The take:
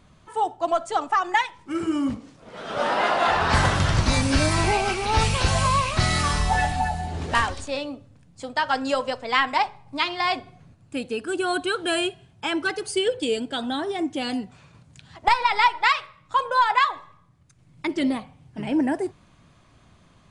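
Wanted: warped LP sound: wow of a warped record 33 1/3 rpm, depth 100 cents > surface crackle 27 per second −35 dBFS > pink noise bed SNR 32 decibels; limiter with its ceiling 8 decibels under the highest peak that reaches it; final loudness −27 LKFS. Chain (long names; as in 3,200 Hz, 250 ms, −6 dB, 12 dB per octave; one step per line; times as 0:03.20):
brickwall limiter −13 dBFS
wow of a warped record 33 1/3 rpm, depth 100 cents
surface crackle 27 per second −35 dBFS
pink noise bed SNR 32 dB
level −2 dB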